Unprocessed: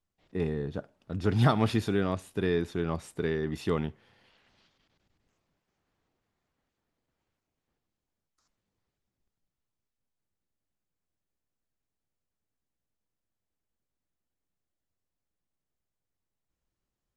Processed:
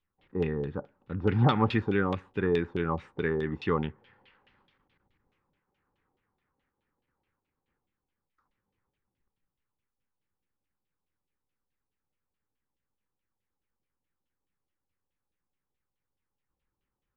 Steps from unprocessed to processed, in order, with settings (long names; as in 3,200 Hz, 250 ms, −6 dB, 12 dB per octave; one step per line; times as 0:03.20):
auto-filter low-pass saw down 4.7 Hz 630–3,300 Hz
Butterworth band-reject 660 Hz, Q 4.5